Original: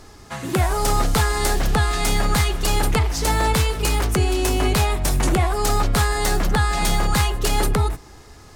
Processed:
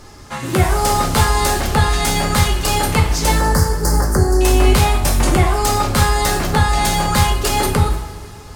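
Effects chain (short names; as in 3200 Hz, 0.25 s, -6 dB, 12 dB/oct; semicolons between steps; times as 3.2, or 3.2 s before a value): 3.38–4.41 elliptic band-stop 1800–4700 Hz; two-slope reverb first 0.48 s, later 3.2 s, from -18 dB, DRR 1 dB; gain +2.5 dB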